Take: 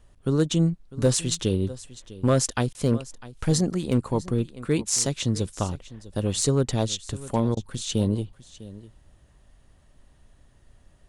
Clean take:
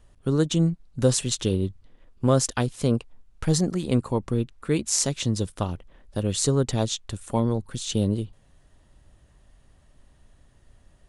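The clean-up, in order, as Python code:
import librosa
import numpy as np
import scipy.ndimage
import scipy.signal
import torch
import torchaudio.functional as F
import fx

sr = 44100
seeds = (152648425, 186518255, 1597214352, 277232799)

y = fx.fix_declip(x, sr, threshold_db=-12.0)
y = fx.fix_interpolate(y, sr, at_s=(2.73, 7.55), length_ms=17.0)
y = fx.fix_echo_inverse(y, sr, delay_ms=651, level_db=-18.0)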